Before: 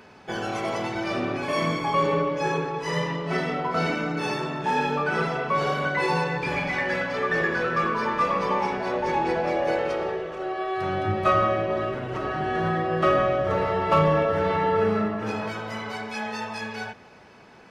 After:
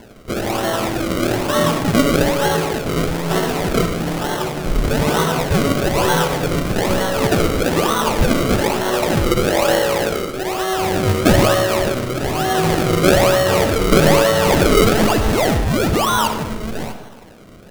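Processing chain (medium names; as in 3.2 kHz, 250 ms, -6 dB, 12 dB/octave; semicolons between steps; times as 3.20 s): 3.82–4.84 s: comb filter that takes the minimum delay 5.6 ms; 14.46–16.28 s: painted sound fall 890–5200 Hz -25 dBFS; decimation with a swept rate 35×, swing 100% 1.1 Hz; on a send: reverberation RT60 0.90 s, pre-delay 27 ms, DRR 7.5 dB; on the sum: trim +7.5 dB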